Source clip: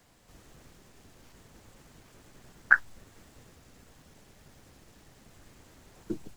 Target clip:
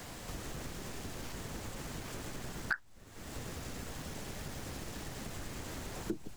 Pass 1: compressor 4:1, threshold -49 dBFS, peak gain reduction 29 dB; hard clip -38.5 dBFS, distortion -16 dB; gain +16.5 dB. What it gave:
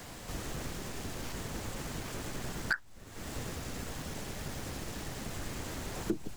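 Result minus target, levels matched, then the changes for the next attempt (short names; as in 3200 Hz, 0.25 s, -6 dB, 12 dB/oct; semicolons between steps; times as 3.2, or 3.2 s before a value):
compressor: peak gain reduction -5 dB
change: compressor 4:1, threshold -55.5 dBFS, peak gain reduction 34 dB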